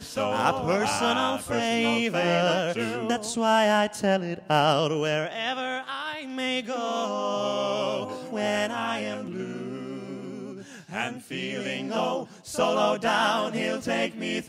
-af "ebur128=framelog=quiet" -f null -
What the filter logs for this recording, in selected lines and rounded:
Integrated loudness:
  I:         -26.4 LUFS
  Threshold: -36.6 LUFS
Loudness range:
  LRA:         7.8 LU
  Threshold: -46.9 LUFS
  LRA low:   -32.0 LUFS
  LRA high:  -24.2 LUFS